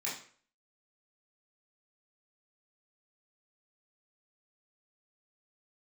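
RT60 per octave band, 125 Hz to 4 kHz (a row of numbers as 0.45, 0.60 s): 0.45, 0.45, 0.50, 0.45, 0.45, 0.40 s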